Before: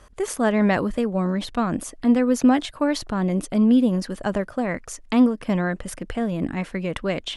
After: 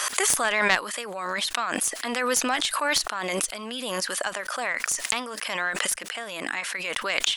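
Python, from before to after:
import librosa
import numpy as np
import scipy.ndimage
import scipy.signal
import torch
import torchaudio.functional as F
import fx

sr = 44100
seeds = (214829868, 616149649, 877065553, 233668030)

y = scipy.signal.sosfilt(scipy.signal.butter(2, 1200.0, 'highpass', fs=sr, output='sos'), x)
y = fx.high_shelf(y, sr, hz=4200.0, db=8.5)
y = fx.cheby_harmonics(y, sr, harmonics=(2, 8), levels_db=(-6, -31), full_scale_db=-8.0)
y = fx.pre_swell(y, sr, db_per_s=25.0)
y = y * 10.0 ** (2.5 / 20.0)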